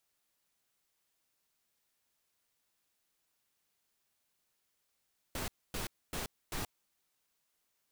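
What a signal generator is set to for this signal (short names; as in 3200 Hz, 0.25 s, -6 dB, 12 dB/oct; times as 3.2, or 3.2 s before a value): noise bursts pink, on 0.13 s, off 0.26 s, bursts 4, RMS -38 dBFS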